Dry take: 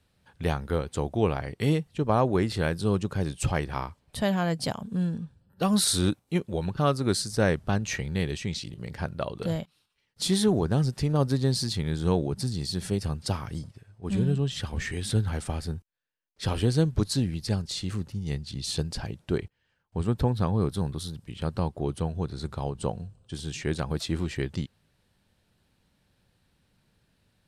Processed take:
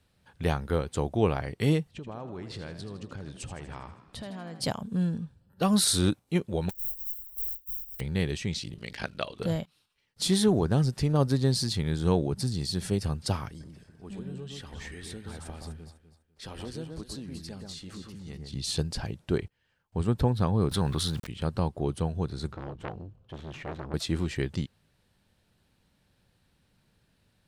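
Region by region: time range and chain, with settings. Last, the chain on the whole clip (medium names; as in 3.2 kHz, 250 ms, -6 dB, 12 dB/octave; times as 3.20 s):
1.91–4.61 s: low-pass 6.9 kHz + compression, threshold -37 dBFS + frequency-shifting echo 80 ms, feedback 58%, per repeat +42 Hz, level -11 dB
6.69–7.99 s: spectral contrast reduction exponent 0.12 + inverse Chebyshev band-stop 130–9500 Hz, stop band 50 dB
8.78–9.39 s: frequency weighting D + ring modulator 26 Hz
13.48–18.53 s: peaking EQ 110 Hz -14 dB 0.49 oct + compression 2:1, threshold -47 dBFS + echo whose repeats swap between lows and highs 125 ms, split 1.8 kHz, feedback 50%, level -3 dB
20.71–21.27 s: peaking EQ 1.7 kHz +8.5 dB 2.2 oct + small samples zeroed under -53.5 dBFS + level flattener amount 50%
22.52–23.94 s: median filter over 9 samples + low-pass 4.9 kHz + transformer saturation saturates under 1.4 kHz
whole clip: none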